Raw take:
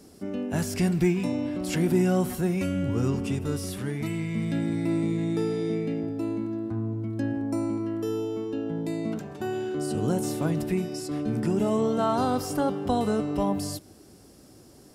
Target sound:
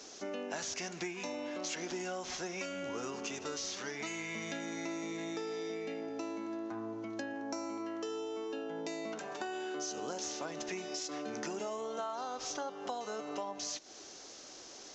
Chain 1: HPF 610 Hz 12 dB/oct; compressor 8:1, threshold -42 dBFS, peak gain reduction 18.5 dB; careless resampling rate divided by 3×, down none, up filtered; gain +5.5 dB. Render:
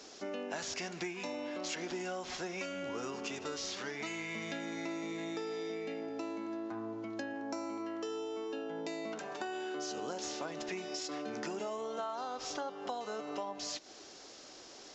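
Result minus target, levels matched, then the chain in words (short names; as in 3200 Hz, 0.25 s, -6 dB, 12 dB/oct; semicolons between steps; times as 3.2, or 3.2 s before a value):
8000 Hz band -3.5 dB
HPF 610 Hz 12 dB/oct; bell 8600 Hz +9 dB 0.22 oct; compressor 8:1, threshold -42 dBFS, peak gain reduction 18.5 dB; careless resampling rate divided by 3×, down none, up filtered; gain +5.5 dB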